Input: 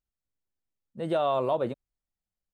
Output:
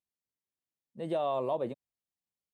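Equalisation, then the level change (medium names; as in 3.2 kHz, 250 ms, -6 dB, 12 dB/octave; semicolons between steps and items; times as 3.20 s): high-pass 120 Hz 12 dB/octave; peaking EQ 1.4 kHz -12.5 dB 0.24 oct; dynamic bell 3.9 kHz, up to -3 dB, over -45 dBFS, Q 0.85; -4.5 dB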